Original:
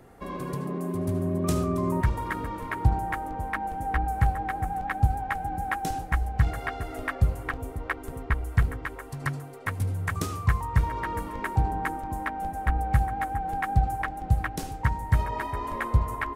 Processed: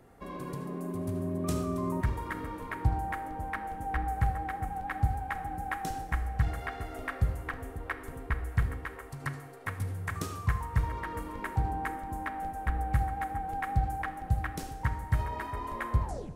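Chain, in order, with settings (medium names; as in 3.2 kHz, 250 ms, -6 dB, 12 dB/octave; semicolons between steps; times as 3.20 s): tape stop on the ending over 0.33 s; Schroeder reverb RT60 0.99 s, combs from 26 ms, DRR 10 dB; trim -5.5 dB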